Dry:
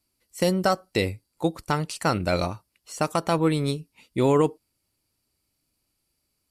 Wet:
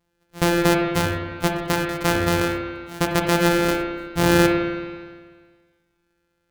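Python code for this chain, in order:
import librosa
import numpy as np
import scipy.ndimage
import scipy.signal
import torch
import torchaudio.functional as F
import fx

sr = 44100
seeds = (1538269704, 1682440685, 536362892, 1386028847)

y = np.r_[np.sort(x[:len(x) // 256 * 256].reshape(-1, 256), axis=1).ravel(), x[len(x) // 256 * 256:]]
y = fx.rev_spring(y, sr, rt60_s=1.6, pass_ms=(32, 54), chirp_ms=50, drr_db=1.5)
y = y * 10.0 ** (2.5 / 20.0)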